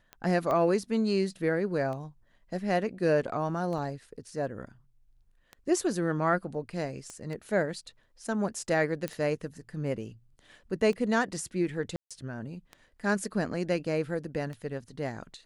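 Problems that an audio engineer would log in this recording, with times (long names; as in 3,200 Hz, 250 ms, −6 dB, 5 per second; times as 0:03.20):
scratch tick 33 1/3 rpm −27 dBFS
0:00.51: click −19 dBFS
0:03.78: drop-out 3.6 ms
0:07.10: click −28 dBFS
0:09.08: click −18 dBFS
0:11.96–0:12.11: drop-out 146 ms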